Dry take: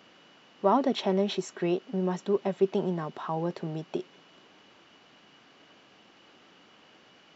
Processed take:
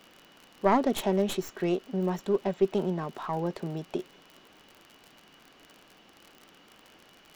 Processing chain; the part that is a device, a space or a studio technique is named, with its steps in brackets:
record under a worn stylus (stylus tracing distortion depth 0.16 ms; surface crackle 46 per second −38 dBFS; pink noise bed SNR 41 dB)

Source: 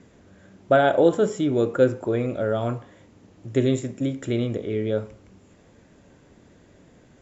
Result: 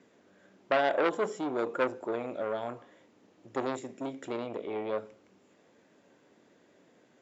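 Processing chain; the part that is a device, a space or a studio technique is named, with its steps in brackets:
public-address speaker with an overloaded transformer (saturating transformer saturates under 1,400 Hz; band-pass filter 280–6,700 Hz)
0:04.47–0:04.99: thirty-one-band graphic EQ 630 Hz +6 dB, 2,500 Hz +5 dB, 6,300 Hz −7 dB
level −6 dB

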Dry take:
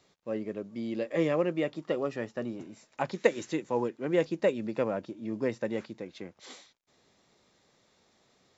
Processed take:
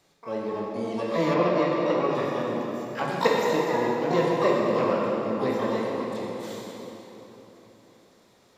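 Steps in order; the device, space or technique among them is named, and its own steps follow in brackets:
shimmer-style reverb (pitch-shifted copies added +12 semitones −6 dB; convolution reverb RT60 3.9 s, pre-delay 13 ms, DRR −3.5 dB)
0:01.34–0:02.15: low-pass filter 5,100 Hz 12 dB per octave

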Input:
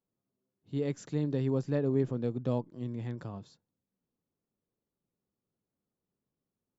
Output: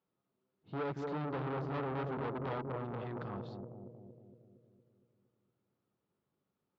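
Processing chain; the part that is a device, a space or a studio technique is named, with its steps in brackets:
0:01.53–0:02.22: parametric band 650 Hz −3.5 dB 2.3 octaves
analogue delay pedal into a guitar amplifier (bucket-brigade delay 231 ms, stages 1,024, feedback 60%, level −6.5 dB; tube saturation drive 40 dB, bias 0.5; loudspeaker in its box 77–3,900 Hz, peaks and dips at 110 Hz −7 dB, 240 Hz −6 dB, 890 Hz +4 dB, 1,300 Hz +7 dB)
level +5.5 dB

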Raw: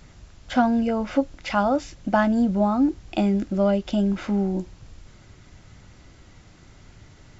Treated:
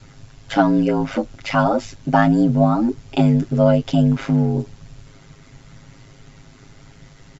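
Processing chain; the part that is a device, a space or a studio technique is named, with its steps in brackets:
ring-modulated robot voice (ring modulation 52 Hz; comb filter 7.4 ms, depth 91%)
level +4.5 dB

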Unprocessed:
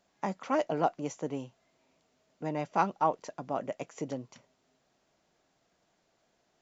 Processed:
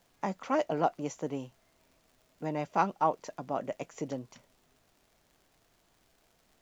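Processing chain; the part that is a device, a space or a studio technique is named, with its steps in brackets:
vinyl LP (surface crackle 98 per second −53 dBFS; pink noise bed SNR 36 dB)

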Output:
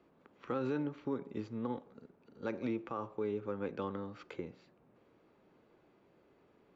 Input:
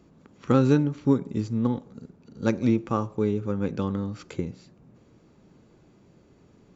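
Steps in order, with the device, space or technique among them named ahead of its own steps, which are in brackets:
DJ mixer with the lows and highs turned down (three-way crossover with the lows and the highs turned down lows −14 dB, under 330 Hz, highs −21 dB, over 3,700 Hz; brickwall limiter −22 dBFS, peak gain reduction 9.5 dB)
level −4.5 dB

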